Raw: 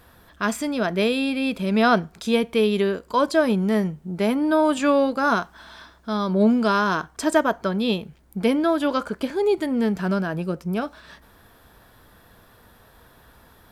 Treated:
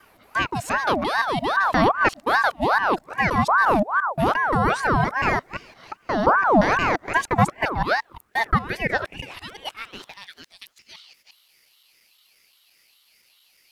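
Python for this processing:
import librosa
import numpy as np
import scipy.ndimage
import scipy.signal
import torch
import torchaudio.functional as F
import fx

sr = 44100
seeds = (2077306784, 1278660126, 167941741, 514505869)

y = fx.local_reverse(x, sr, ms=174.0)
y = fx.filter_sweep_highpass(y, sr, from_hz=160.0, to_hz=3600.0, start_s=6.79, end_s=10.54, q=2.8)
y = fx.ring_lfo(y, sr, carrier_hz=890.0, swing_pct=55, hz=2.5)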